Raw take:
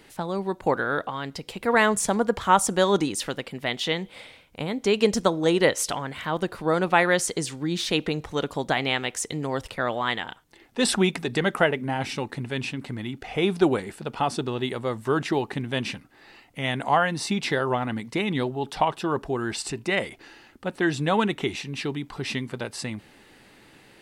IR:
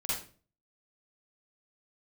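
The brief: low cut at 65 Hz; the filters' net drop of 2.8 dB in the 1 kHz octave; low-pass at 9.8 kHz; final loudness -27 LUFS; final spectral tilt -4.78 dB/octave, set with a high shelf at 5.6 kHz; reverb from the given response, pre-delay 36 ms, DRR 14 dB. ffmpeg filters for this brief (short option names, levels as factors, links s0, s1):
-filter_complex "[0:a]highpass=65,lowpass=9800,equalizer=f=1000:t=o:g=-3.5,highshelf=f=5600:g=-5.5,asplit=2[s0][s1];[1:a]atrim=start_sample=2205,adelay=36[s2];[s1][s2]afir=irnorm=-1:irlink=0,volume=0.119[s3];[s0][s3]amix=inputs=2:normalize=0"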